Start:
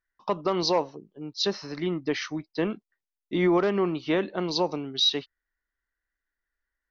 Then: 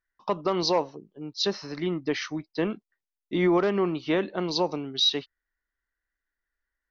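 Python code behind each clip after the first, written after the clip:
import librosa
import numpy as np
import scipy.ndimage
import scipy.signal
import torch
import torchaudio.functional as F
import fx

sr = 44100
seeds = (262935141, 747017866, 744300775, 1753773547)

y = x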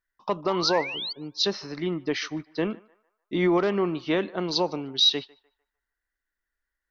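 y = fx.spec_paint(x, sr, seeds[0], shape='rise', start_s=0.49, length_s=0.64, low_hz=830.0, high_hz=4700.0, level_db=-35.0)
y = fx.echo_banded(y, sr, ms=150, feedback_pct=43, hz=1100.0, wet_db=-20.5)
y = fx.dynamic_eq(y, sr, hz=4000.0, q=0.96, threshold_db=-37.0, ratio=4.0, max_db=3)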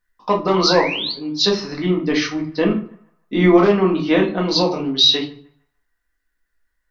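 y = fx.room_shoebox(x, sr, seeds[1], volume_m3=210.0, walls='furnished', distance_m=1.9)
y = y * librosa.db_to_amplitude(5.0)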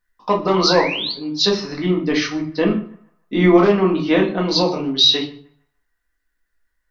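y = x + 10.0 ** (-21.5 / 20.0) * np.pad(x, (int(121 * sr / 1000.0), 0))[:len(x)]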